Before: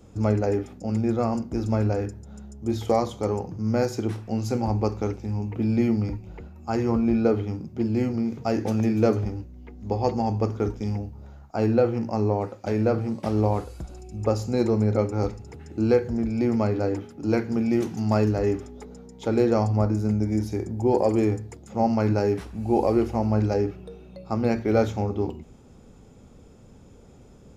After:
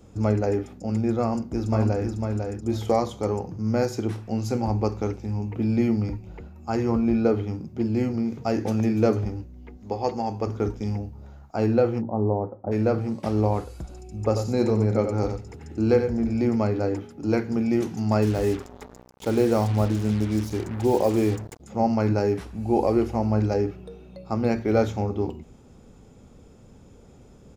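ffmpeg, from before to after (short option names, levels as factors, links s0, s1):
-filter_complex "[0:a]asplit=2[s0][s1];[s1]afade=t=in:st=1.22:d=0.01,afade=t=out:st=2.1:d=0.01,aecho=0:1:500|1000|1500:0.595662|0.0893493|0.0134024[s2];[s0][s2]amix=inputs=2:normalize=0,asettb=1/sr,asplit=3[s3][s4][s5];[s3]atrim=end=9.774[s6];[s4]atrim=start=9.77:end=10.47,asetpts=PTS-STARTPTS,afade=t=in:d=0.004:c=qsin,afade=t=out:st=0.696:d=0.004:c=qsin,lowshelf=f=210:g=-10.5[s7];[s5]atrim=start=10.466[s8];[s6][s7]acrossfade=d=0.004:c1=hsin:c2=qsin[s9];[s9][s8]acrossfade=d=0.004:c1=qsin:c2=hsin,asplit=3[s10][s11][s12];[s10]afade=t=out:st=12:d=0.02[s13];[s11]lowpass=f=1000:w=0.5412,lowpass=f=1000:w=1.3066,afade=t=in:st=12:d=0.02,afade=t=out:st=12.71:d=0.02[s14];[s12]afade=t=in:st=12.71:d=0.02[s15];[s13][s14][s15]amix=inputs=3:normalize=0,asettb=1/sr,asplit=3[s16][s17][s18];[s16]atrim=end=14.234[s19];[s17]atrim=start=14.23:end=16.49,asetpts=PTS-STARTPTS,afade=t=in:d=0.004:c=qsin,afade=t=out:st=2.256:d=0.004:c=qsin,aecho=1:1:91:0.422,atrim=end_sample=99666[s20];[s18]atrim=start=16.486[s21];[s19][s20]acrossfade=d=0.004:c1=hsin:c2=qsin[s22];[s22][s21]acrossfade=d=0.004:c1=qsin:c2=hsin,asettb=1/sr,asplit=3[s23][s24][s25];[s23]atrim=end=18.224[s26];[s24]atrim=start=18.22:end=21.6,asetpts=PTS-STARTPTS,afade=t=in:d=0.004:c=qsin,afade=t=out:st=3.376:d=0.004:c=qsin,acrusher=bits=5:mix=0:aa=0.5[s27];[s25]atrim=start=21.596[s28];[s26][s27]acrossfade=d=0.004:c1=hsin:c2=qsin[s29];[s29][s28]acrossfade=d=0.004:c1=qsin:c2=hsin"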